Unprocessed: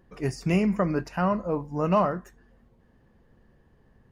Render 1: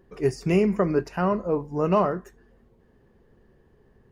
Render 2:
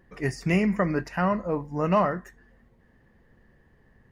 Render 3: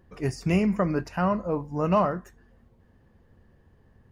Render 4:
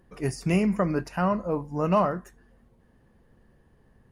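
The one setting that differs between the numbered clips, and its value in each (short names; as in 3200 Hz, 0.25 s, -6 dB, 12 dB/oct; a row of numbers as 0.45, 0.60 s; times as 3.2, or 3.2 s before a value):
bell, frequency: 400, 1900, 86, 10000 Hz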